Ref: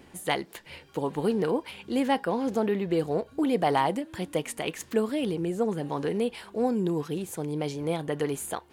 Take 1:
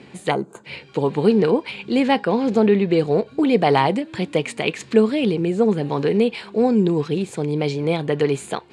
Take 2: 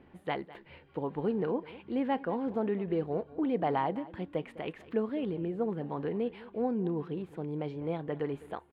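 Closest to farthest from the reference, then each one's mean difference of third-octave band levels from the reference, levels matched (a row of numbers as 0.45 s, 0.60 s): 1, 2; 3.5 dB, 6.0 dB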